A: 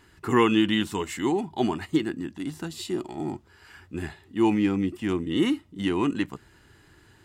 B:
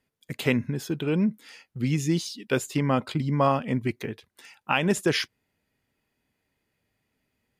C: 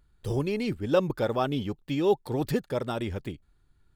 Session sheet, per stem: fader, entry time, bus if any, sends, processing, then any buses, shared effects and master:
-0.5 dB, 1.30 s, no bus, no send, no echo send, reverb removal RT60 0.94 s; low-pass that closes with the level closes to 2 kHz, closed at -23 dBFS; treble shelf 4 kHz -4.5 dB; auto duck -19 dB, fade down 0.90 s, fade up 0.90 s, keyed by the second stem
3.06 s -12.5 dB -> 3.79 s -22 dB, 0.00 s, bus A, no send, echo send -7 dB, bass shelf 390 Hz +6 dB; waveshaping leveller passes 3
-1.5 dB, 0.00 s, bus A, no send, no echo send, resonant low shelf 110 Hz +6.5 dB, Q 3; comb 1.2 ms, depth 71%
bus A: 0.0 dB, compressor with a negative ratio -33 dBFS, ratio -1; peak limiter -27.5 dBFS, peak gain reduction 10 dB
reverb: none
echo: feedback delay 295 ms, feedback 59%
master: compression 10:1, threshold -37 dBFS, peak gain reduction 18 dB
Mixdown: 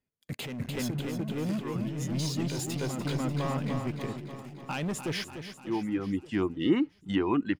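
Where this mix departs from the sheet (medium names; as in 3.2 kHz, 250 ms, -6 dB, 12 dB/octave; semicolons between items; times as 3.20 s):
stem A: missing treble shelf 4 kHz -4.5 dB; stem C: muted; master: missing compression 10:1, threshold -37 dBFS, peak gain reduction 18 dB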